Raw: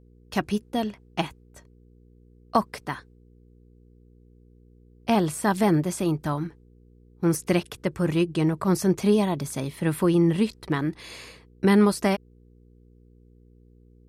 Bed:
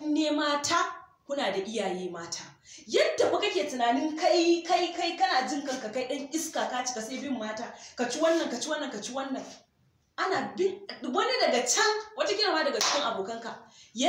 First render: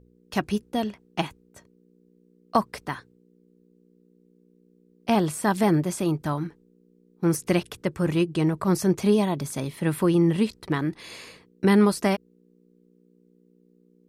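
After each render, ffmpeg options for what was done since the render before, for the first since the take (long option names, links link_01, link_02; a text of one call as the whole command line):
ffmpeg -i in.wav -af "bandreject=frequency=60:width_type=h:width=4,bandreject=frequency=120:width_type=h:width=4" out.wav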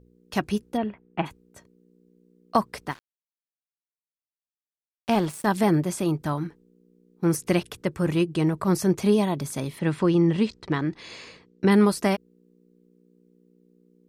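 ffmpeg -i in.wav -filter_complex "[0:a]asplit=3[link_01][link_02][link_03];[link_01]afade=type=out:start_time=0.76:duration=0.02[link_04];[link_02]lowpass=frequency=2500:width=0.5412,lowpass=frequency=2500:width=1.3066,afade=type=in:start_time=0.76:duration=0.02,afade=type=out:start_time=1.25:duration=0.02[link_05];[link_03]afade=type=in:start_time=1.25:duration=0.02[link_06];[link_04][link_05][link_06]amix=inputs=3:normalize=0,asettb=1/sr,asplit=3[link_07][link_08][link_09];[link_07]atrim=end=2.914[link_10];[link_08]atrim=start=2.91:end=5.47,asetpts=PTS-STARTPTS,afade=type=in:duration=0.004:curve=qsin,afade=type=out:start_time=2.556:duration=0.004:curve=qsin,aeval=exprs='sgn(val(0))*max(abs(val(0))-0.0141,0)':channel_layout=same[link_11];[link_09]atrim=start=5.466[link_12];[link_10][link_11]acrossfade=duration=0.004:curve1=hsin:curve2=qsin[link_13];[link_13][link_12]acrossfade=duration=0.004:curve1=qsin:curve2=hsin,asplit=3[link_14][link_15][link_16];[link_14]afade=type=out:start_time=9.78:duration=0.02[link_17];[link_15]lowpass=frequency=7200:width=0.5412,lowpass=frequency=7200:width=1.3066,afade=type=in:start_time=9.78:duration=0.02,afade=type=out:start_time=11.7:duration=0.02[link_18];[link_16]afade=type=in:start_time=11.7:duration=0.02[link_19];[link_17][link_18][link_19]amix=inputs=3:normalize=0" out.wav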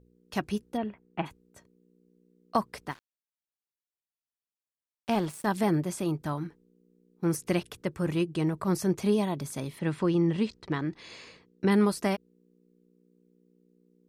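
ffmpeg -i in.wav -af "volume=-5dB" out.wav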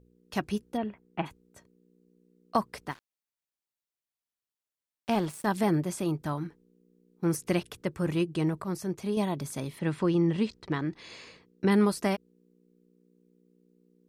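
ffmpeg -i in.wav -filter_complex "[0:a]asplit=3[link_01][link_02][link_03];[link_01]atrim=end=8.622[link_04];[link_02]atrim=start=8.618:end=9.172,asetpts=PTS-STARTPTS,volume=-6dB[link_05];[link_03]atrim=start=9.168[link_06];[link_04][link_05]acrossfade=duration=0.004:curve1=hsin:curve2=hsin[link_07];[link_07][link_06]acrossfade=duration=0.004:curve1=hsin:curve2=hsin" out.wav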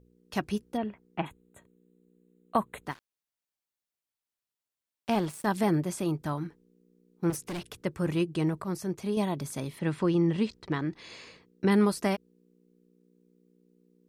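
ffmpeg -i in.wav -filter_complex "[0:a]asettb=1/sr,asplit=3[link_01][link_02][link_03];[link_01]atrim=end=1.214[link_04];[link_02]atrim=start=1.21:end=2.84,asetpts=PTS-STARTPTS,afade=type=in:duration=0.004:curve=qsin,afade=type=out:start_time=1.626:duration=0.004:curve=qsin,asuperstop=centerf=5200:order=20:qfactor=2.3[link_05];[link_03]atrim=start=2.836[link_06];[link_04][link_05]acrossfade=duration=0.004:curve1=hsin:curve2=qsin[link_07];[link_07][link_06]acrossfade=duration=0.004:curve1=qsin:curve2=hsin,asettb=1/sr,asplit=3[link_08][link_09][link_10];[link_08]atrim=end=7.304[link_11];[link_09]atrim=start=7.3:end=7.76,asetpts=PTS-STARTPTS,afade=type=in:duration=0.004:curve=qsin,afade=type=out:start_time=0.456:duration=0.004:curve=qsin,asoftclip=type=hard:threshold=-32.5dB[link_12];[link_10]atrim=start=7.756[link_13];[link_11][link_12]acrossfade=duration=0.004:curve1=hsin:curve2=qsin[link_14];[link_14][link_13]acrossfade=duration=0.004:curve1=qsin:curve2=hsin" out.wav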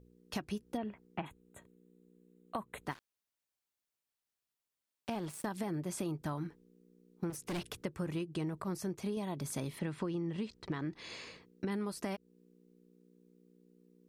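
ffmpeg -i in.wav -af "alimiter=limit=-22dB:level=0:latency=1:release=364,acompressor=threshold=-34dB:ratio=6" out.wav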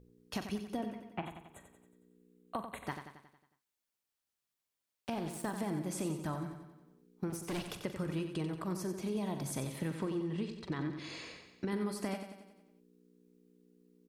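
ffmpeg -i in.wav -filter_complex "[0:a]asplit=2[link_01][link_02];[link_02]adelay=43,volume=-13dB[link_03];[link_01][link_03]amix=inputs=2:normalize=0,aecho=1:1:91|182|273|364|455|546|637:0.376|0.207|0.114|0.0625|0.0344|0.0189|0.0104" out.wav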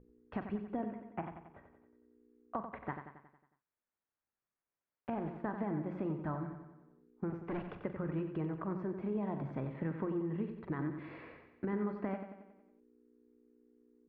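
ffmpeg -i in.wav -af "lowpass=frequency=1900:width=0.5412,lowpass=frequency=1900:width=1.3066,bandreject=frequency=60:width_type=h:width=6,bandreject=frequency=120:width_type=h:width=6,bandreject=frequency=180:width_type=h:width=6" out.wav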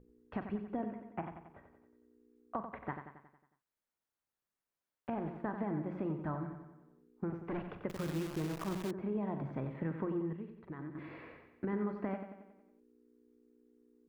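ffmpeg -i in.wav -filter_complex "[0:a]asettb=1/sr,asplit=3[link_01][link_02][link_03];[link_01]atrim=end=7.894[link_04];[link_02]atrim=start=7.89:end=8.91,asetpts=PTS-STARTPTS,afade=type=in:duration=0.004:curve=qsin,afade=type=out:start_time=1.016:duration=0.004:curve=qsin,acrusher=bits=8:dc=4:mix=0:aa=0.000001[link_05];[link_03]atrim=start=8.906[link_06];[link_04][link_05]acrossfade=duration=0.004:curve1=hsin:curve2=qsin[link_07];[link_07][link_06]acrossfade=duration=0.004:curve1=qsin:curve2=hsin,asplit=3[link_08][link_09][link_10];[link_08]atrim=end=10.332[link_11];[link_09]atrim=start=10.328:end=10.952,asetpts=PTS-STARTPTS,volume=-7.5dB[link_12];[link_10]atrim=start=10.948[link_13];[link_11][link_12]acrossfade=duration=0.004:curve1=hsin:curve2=hsin[link_14];[link_14][link_13]acrossfade=duration=0.004:curve1=hsin:curve2=hsin" out.wav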